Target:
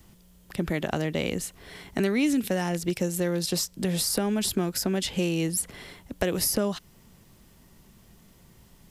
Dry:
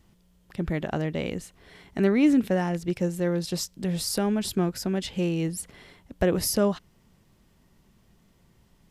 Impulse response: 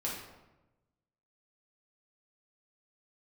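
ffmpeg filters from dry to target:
-filter_complex "[0:a]acrossover=split=190|2500[s0][s1][s2];[s0]acompressor=threshold=0.00794:ratio=4[s3];[s1]acompressor=threshold=0.0282:ratio=4[s4];[s2]acompressor=threshold=0.0141:ratio=4[s5];[s3][s4][s5]amix=inputs=3:normalize=0,crystalizer=i=1:c=0,volume=1.88"

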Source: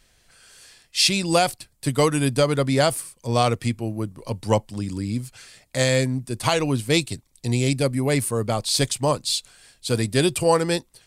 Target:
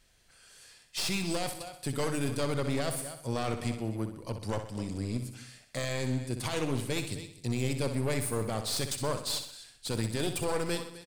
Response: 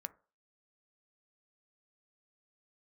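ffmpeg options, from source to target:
-filter_complex "[0:a]asplit=2[s0][s1];[s1]aecho=0:1:259:0.1[s2];[s0][s2]amix=inputs=2:normalize=0,aeval=exprs='clip(val(0),-1,0.0398)':c=same,alimiter=limit=0.2:level=0:latency=1:release=12,asplit=2[s3][s4];[s4]aecho=0:1:63|126|189|252|315|378:0.355|0.174|0.0852|0.0417|0.0205|0.01[s5];[s3][s5]amix=inputs=2:normalize=0,volume=0.473"

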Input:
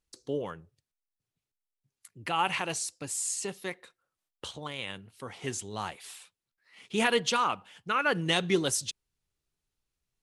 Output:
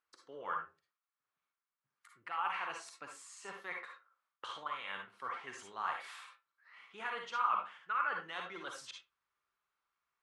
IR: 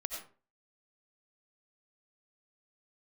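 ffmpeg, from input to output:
-filter_complex "[0:a]areverse,acompressor=threshold=0.01:ratio=6,areverse,bandpass=f=1300:t=q:w=2.5:csg=0[s0];[1:a]atrim=start_sample=2205,asetrate=74970,aresample=44100[s1];[s0][s1]afir=irnorm=-1:irlink=0,volume=6.31"

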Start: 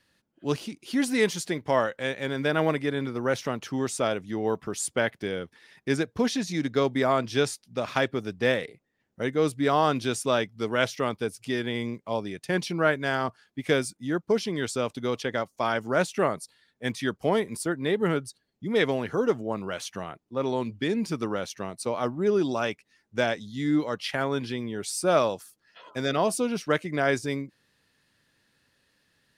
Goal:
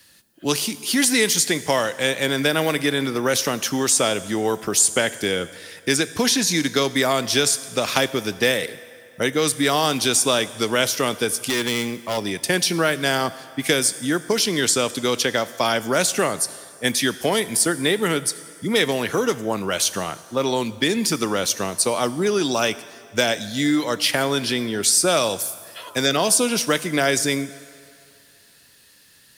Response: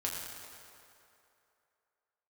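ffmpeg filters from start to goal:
-filter_complex "[0:a]acrossover=split=160|840|2300|7400[s0][s1][s2][s3][s4];[s0]acompressor=threshold=0.00398:ratio=4[s5];[s1]acompressor=threshold=0.0355:ratio=4[s6];[s2]acompressor=threshold=0.0126:ratio=4[s7];[s3]acompressor=threshold=0.0141:ratio=4[s8];[s4]acompressor=threshold=0.00398:ratio=4[s9];[s5][s6][s7][s8][s9]amix=inputs=5:normalize=0,asettb=1/sr,asplit=3[s10][s11][s12];[s10]atrim=end=11.494[s13];[s11]atrim=start=11.49:end=12.18,asetpts=PTS-STARTPTS,afade=t=in:d=0.004:c=qsin,afade=t=out:st=0.686:d=0.004:c=qsin,volume=29.9,asoftclip=hard,volume=0.0335[s14];[s12]atrim=start=12.176[s15];[s13][s14]acrossfade=d=0.004:c1=hsin:c2=qsin[s16];[s16][s15]acrossfade=d=0.004:c1=qsin:c2=hsin,crystalizer=i=3.5:c=0,asplit=2[s17][s18];[1:a]atrim=start_sample=2205,asetrate=48510,aresample=44100,highshelf=f=8800:g=11[s19];[s18][s19]afir=irnorm=-1:irlink=0,volume=0.178[s20];[s17][s20]amix=inputs=2:normalize=0,volume=2.37"

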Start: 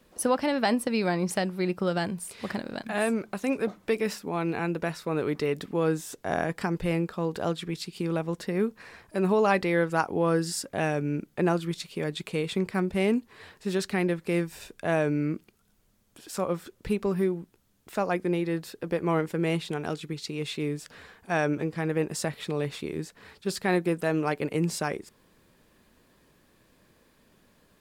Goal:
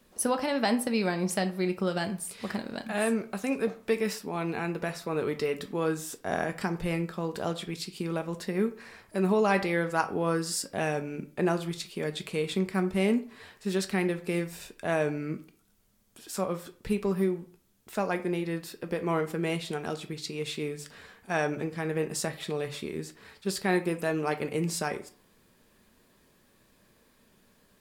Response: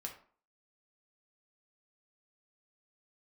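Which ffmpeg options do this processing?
-filter_complex "[0:a]asplit=2[s0][s1];[1:a]atrim=start_sample=2205,highshelf=f=3800:g=8[s2];[s1][s2]afir=irnorm=-1:irlink=0,volume=1.19[s3];[s0][s3]amix=inputs=2:normalize=0,volume=0.447"

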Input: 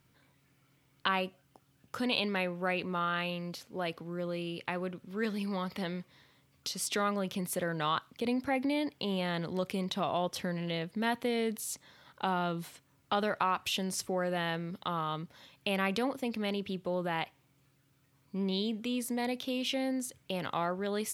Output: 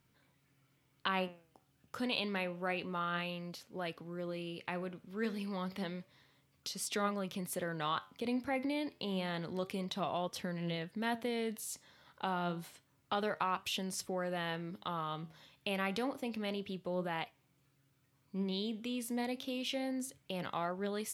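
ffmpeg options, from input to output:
-af "flanger=delay=4.1:depth=9.5:regen=83:speed=0.29:shape=triangular"

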